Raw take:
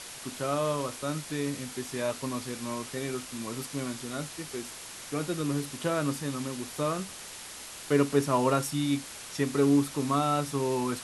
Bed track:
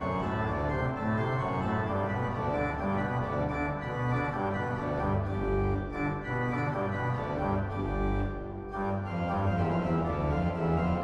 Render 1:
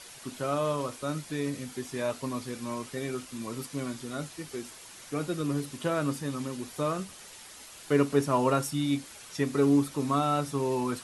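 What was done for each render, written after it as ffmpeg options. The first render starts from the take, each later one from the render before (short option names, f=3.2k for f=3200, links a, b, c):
-af "afftdn=nr=7:nf=-44"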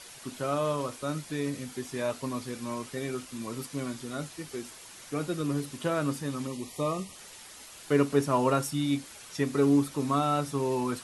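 -filter_complex "[0:a]asettb=1/sr,asplit=3[a][b][c];[a]atrim=end=6.474[d];[b]atrim=start=6.47:end=7.16,asetpts=PTS-STARTPTS,afade=t=in:d=0.004:c=qsin,afade=t=out:st=0.686:d=0.004:c=qsin,asuperstop=centerf=1500:order=20:qfactor=2.8[e];[c]atrim=start=7.156[f];[d][e]acrossfade=d=0.004:c1=hsin:c2=qsin[g];[g][f]acrossfade=d=0.004:c1=qsin:c2=hsin"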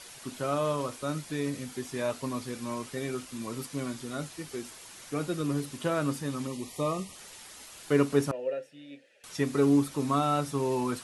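-filter_complex "[0:a]asettb=1/sr,asplit=3[a][b][c];[a]atrim=end=8.314[d];[b]atrim=start=8.31:end=9.24,asetpts=PTS-STARTPTS,afade=t=in:d=0.004:c=qsin,afade=t=out:st=0.926:d=0.004:c=qsin,asplit=3[e][f][g];[e]bandpass=f=530:t=q:w=8,volume=0dB[h];[f]bandpass=f=1.84k:t=q:w=8,volume=-6dB[i];[g]bandpass=f=2.48k:t=q:w=8,volume=-9dB[j];[h][i][j]amix=inputs=3:normalize=0[k];[c]atrim=start=9.236[l];[d][k]acrossfade=d=0.004:c1=hsin:c2=qsin[m];[m][l]acrossfade=d=0.004:c1=qsin:c2=hsin"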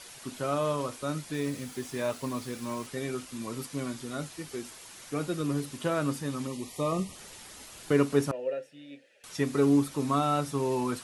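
-filter_complex "[0:a]asettb=1/sr,asplit=3[a][b][c];[a]atrim=end=1.344[d];[b]atrim=start=1.34:end=2.87,asetpts=PTS-STARTPTS,afade=t=in:d=0.004:c=qsin,afade=t=out:st=1.526:d=0.004:c=qsin,acrusher=bits=7:mix=0:aa=0.5[e];[c]atrim=start=2.866[f];[d][e]acrossfade=d=0.004:c1=hsin:c2=qsin[g];[g][f]acrossfade=d=0.004:c1=qsin:c2=hsin,asettb=1/sr,asplit=3[h][i][j];[h]atrim=end=6.924[k];[i]atrim=start=6.92:end=7.92,asetpts=PTS-STARTPTS,afade=t=in:d=0.004:c=qsin,afade=t=out:st=0.996:d=0.004:c=qsin,lowshelf=f=450:g=6.5[l];[j]atrim=start=7.916[m];[k][l]acrossfade=d=0.004:c1=hsin:c2=qsin[n];[n][m]acrossfade=d=0.004:c1=qsin:c2=hsin"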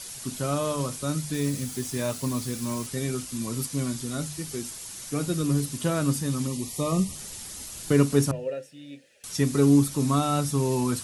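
-af "bass=f=250:g=11,treble=f=4k:g=11,bandreject=f=50:t=h:w=6,bandreject=f=100:t=h:w=6,bandreject=f=150:t=h:w=6"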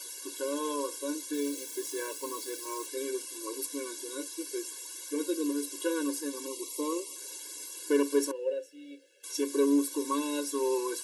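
-af "asoftclip=type=tanh:threshold=-12.5dB,afftfilt=real='re*eq(mod(floor(b*sr/1024/290),2),1)':imag='im*eq(mod(floor(b*sr/1024/290),2),1)':win_size=1024:overlap=0.75"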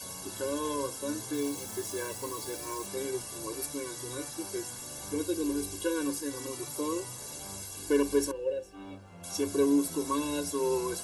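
-filter_complex "[1:a]volume=-17.5dB[a];[0:a][a]amix=inputs=2:normalize=0"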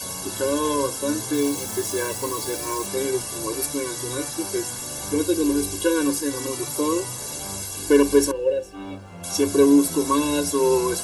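-af "volume=10dB"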